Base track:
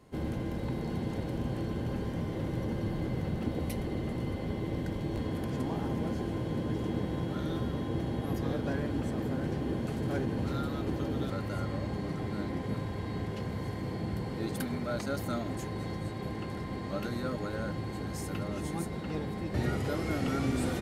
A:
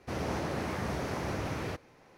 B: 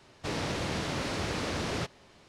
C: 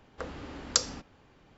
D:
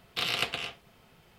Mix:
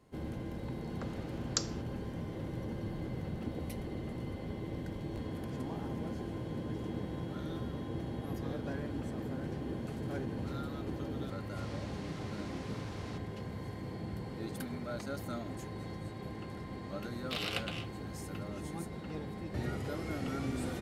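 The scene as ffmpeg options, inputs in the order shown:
-filter_complex "[0:a]volume=0.501[s0];[3:a]atrim=end=1.57,asetpts=PTS-STARTPTS,volume=0.398,afade=t=in:d=0.004:c=hsin,afade=t=out:st=1.566:d=0.004:c=hsin,adelay=810[s1];[2:a]atrim=end=2.28,asetpts=PTS-STARTPTS,volume=0.15,afade=t=in:d=0.004:c=hsin,afade=t=out:st=2.276:d=0.004:c=hsin,adelay=11320[s2];[4:a]atrim=end=1.38,asetpts=PTS-STARTPTS,volume=0.398,afade=t=in:d=0.004:c=hsin,afade=t=out:st=1.376:d=0.004:c=hsin,adelay=17140[s3];[s0][s1][s2][s3]amix=inputs=4:normalize=0"

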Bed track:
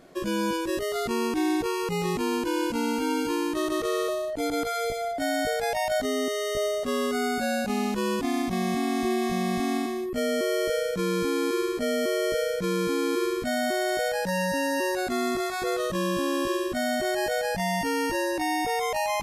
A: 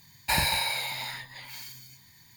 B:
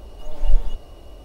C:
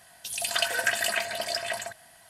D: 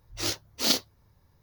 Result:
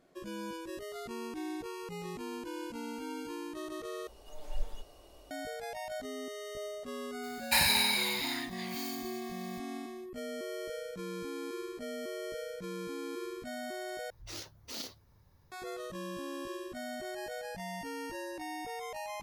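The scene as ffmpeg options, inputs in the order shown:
-filter_complex "[0:a]volume=0.2[s0];[2:a]bass=f=250:g=-10,treble=f=4000:g=6[s1];[1:a]tiltshelf=f=910:g=-5[s2];[4:a]acompressor=threshold=0.00398:ratio=2.5:attack=17:release=32:knee=1:detection=rms[s3];[s0]asplit=3[s4][s5][s6];[s4]atrim=end=4.074[s7];[s1]atrim=end=1.24,asetpts=PTS-STARTPTS,volume=0.335[s8];[s5]atrim=start=5.306:end=14.104[s9];[s3]atrim=end=1.42,asetpts=PTS-STARTPTS,volume=0.841[s10];[s6]atrim=start=15.516[s11];[s2]atrim=end=2.36,asetpts=PTS-STARTPTS,volume=0.631,afade=t=in:d=0.004:c=hsin,afade=t=out:st=2.356:d=0.004:c=hsin,adelay=7230[s12];[s7][s8]acrossfade=d=0.004:c1=hsin:c2=hsin[s13];[s13][s9]acrossfade=d=0.004:c1=hsin:c2=hsin[s14];[s14][s10]acrossfade=d=0.004:c1=hsin:c2=hsin[s15];[s15][s11]acrossfade=d=0.004:c1=hsin:c2=hsin[s16];[s16][s12]amix=inputs=2:normalize=0"

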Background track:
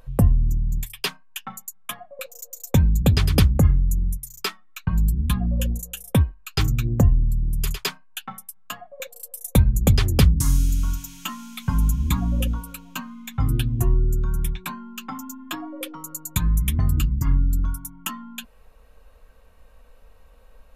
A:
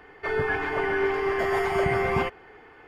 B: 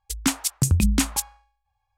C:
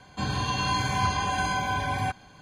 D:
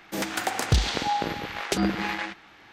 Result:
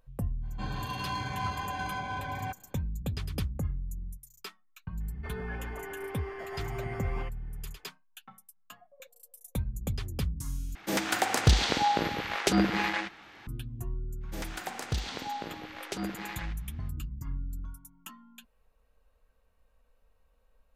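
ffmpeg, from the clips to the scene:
-filter_complex "[4:a]asplit=2[s0][s1];[0:a]volume=0.15[s2];[3:a]adynamicsmooth=sensitivity=3:basefreq=3200[s3];[s2]asplit=2[s4][s5];[s4]atrim=end=10.754[s6];[s0]atrim=end=2.72[s7];[s5]atrim=start=13.466[s8];[s3]atrim=end=2.41,asetpts=PTS-STARTPTS,volume=0.422,afade=t=in:d=0.05,afade=t=out:st=2.36:d=0.05,adelay=410[s9];[1:a]atrim=end=2.87,asetpts=PTS-STARTPTS,volume=0.178,afade=t=in:d=0.004:c=hsin,afade=t=out:st=2.866:d=0.004:c=hsin,adelay=5000[s10];[s1]atrim=end=2.72,asetpts=PTS-STARTPTS,volume=0.299,afade=t=in:d=0.05,afade=t=out:st=2.67:d=0.05,adelay=14200[s11];[s6][s7]acrossfade=d=0.004:c1=hsin:c2=hsin[s12];[s12][s8]acrossfade=d=0.004:c1=hsin:c2=hsin[s13];[s13][s9][s10][s11]amix=inputs=4:normalize=0"

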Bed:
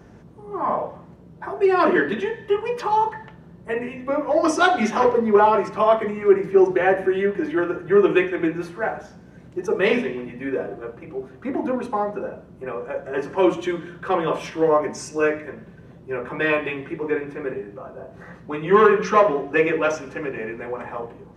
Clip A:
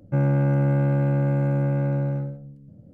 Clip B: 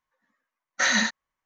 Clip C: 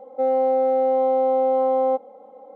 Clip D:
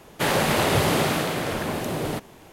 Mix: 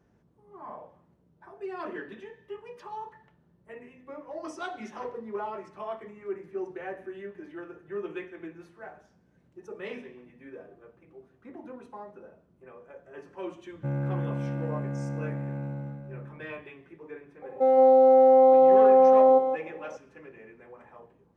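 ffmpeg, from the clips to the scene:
-filter_complex "[0:a]volume=0.106[s0];[1:a]aecho=1:1:406:0.316[s1];[3:a]aecho=1:1:168:0.501[s2];[s1]atrim=end=2.93,asetpts=PTS-STARTPTS,volume=0.335,afade=t=in:d=0.004:c=hsin,afade=t=out:st=2.926:d=0.004:c=hsin,adelay=13710[s3];[s2]atrim=end=2.55,asetpts=PTS-STARTPTS,volume=0.944,afade=t=in:d=0.004:c=hsin,afade=t=out:st=2.546:d=0.004:c=hsin,adelay=17420[s4];[s0][s3][s4]amix=inputs=3:normalize=0"

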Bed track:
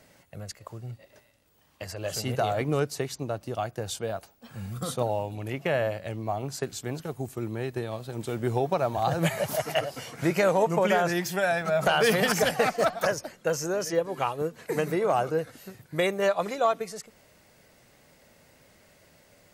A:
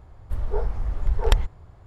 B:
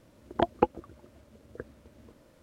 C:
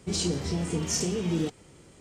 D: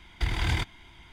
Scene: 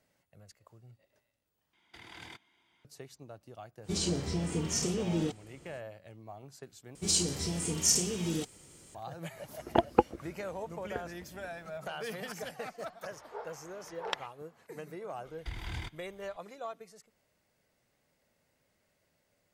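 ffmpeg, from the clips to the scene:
-filter_complex "[4:a]asplit=2[s0][s1];[3:a]asplit=2[s2][s3];[0:a]volume=0.141[s4];[s0]highpass=230[s5];[s3]aemphasis=mode=production:type=75kf[s6];[1:a]highpass=710,lowpass=5200[s7];[s4]asplit=3[s8][s9][s10];[s8]atrim=end=1.734[s11];[s5]atrim=end=1.12,asetpts=PTS-STARTPTS,volume=0.15[s12];[s9]atrim=start=2.846:end=6.954[s13];[s6]atrim=end=2,asetpts=PTS-STARTPTS,volume=0.501[s14];[s10]atrim=start=8.946[s15];[s2]atrim=end=2,asetpts=PTS-STARTPTS,volume=0.668,afade=t=in:d=0.05,afade=t=out:st=1.95:d=0.05,adelay=3820[s16];[2:a]atrim=end=2.42,asetpts=PTS-STARTPTS,afade=t=in:d=0.004:c=hsin,afade=t=out:st=2.416:d=0.004:c=hsin,adelay=9360[s17];[s7]atrim=end=1.86,asetpts=PTS-STARTPTS,volume=0.562,afade=t=in:d=0.004:c=hsin,afade=t=out:st=1.856:d=0.004:c=hsin,adelay=12810[s18];[s1]atrim=end=1.12,asetpts=PTS-STARTPTS,volume=0.237,afade=t=in:d=0.004:c=hsin,afade=t=out:st=1.116:d=0.004:c=hsin,adelay=15250[s19];[s11][s12]acrossfade=d=0.004:c1=hsin:c2=hsin[s20];[s20][s13]acrossfade=d=0.004:c1=hsin:c2=hsin[s21];[s21][s14]acrossfade=d=0.004:c1=hsin:c2=hsin[s22];[s22][s15]acrossfade=d=0.004:c1=hsin:c2=hsin[s23];[s23][s16][s17][s18][s19]amix=inputs=5:normalize=0"

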